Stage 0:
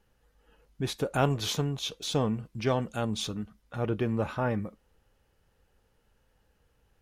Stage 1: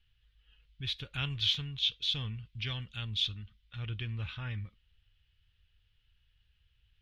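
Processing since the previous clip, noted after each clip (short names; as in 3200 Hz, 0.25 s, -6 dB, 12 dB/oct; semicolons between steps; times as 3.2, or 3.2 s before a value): EQ curve 100 Hz 0 dB, 210 Hz -18 dB, 670 Hz -27 dB, 3300 Hz +8 dB, 7500 Hz -21 dB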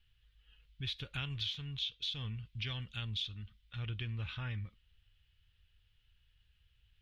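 compressor 12:1, threshold -35 dBFS, peak gain reduction 11.5 dB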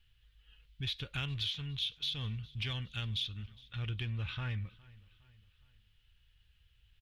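in parallel at -9 dB: hard clip -36 dBFS, distortion -14 dB; on the sum: feedback echo 0.411 s, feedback 48%, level -23 dB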